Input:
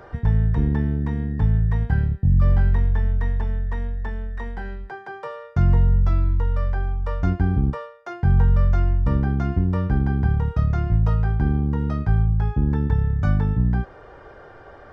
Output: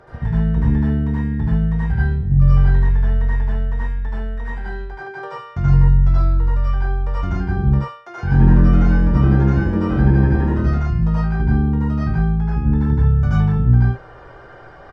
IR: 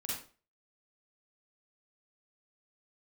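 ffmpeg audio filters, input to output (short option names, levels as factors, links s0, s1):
-filter_complex "[0:a]asplit=3[s0][s1][s2];[s0]afade=t=out:st=8.17:d=0.02[s3];[s1]asplit=5[s4][s5][s6][s7][s8];[s5]adelay=84,afreqshift=130,volume=0.596[s9];[s6]adelay=168,afreqshift=260,volume=0.197[s10];[s7]adelay=252,afreqshift=390,volume=0.0646[s11];[s8]adelay=336,afreqshift=520,volume=0.0214[s12];[s4][s9][s10][s11][s12]amix=inputs=5:normalize=0,afade=t=in:st=8.17:d=0.02,afade=t=out:st=10.66:d=0.02[s13];[s2]afade=t=in:st=10.66:d=0.02[s14];[s3][s13][s14]amix=inputs=3:normalize=0[s15];[1:a]atrim=start_sample=2205,atrim=end_sample=3528,asetrate=23814,aresample=44100[s16];[s15][s16]afir=irnorm=-1:irlink=0,volume=0.841"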